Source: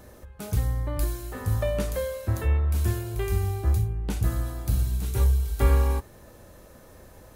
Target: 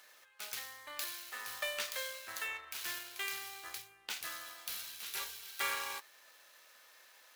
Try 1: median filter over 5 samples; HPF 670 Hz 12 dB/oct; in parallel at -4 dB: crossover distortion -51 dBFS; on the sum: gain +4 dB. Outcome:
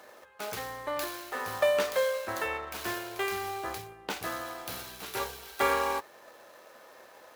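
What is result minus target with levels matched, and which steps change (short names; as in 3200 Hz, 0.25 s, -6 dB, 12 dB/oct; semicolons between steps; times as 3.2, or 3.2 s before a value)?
500 Hz band +12.5 dB
change: HPF 2200 Hz 12 dB/oct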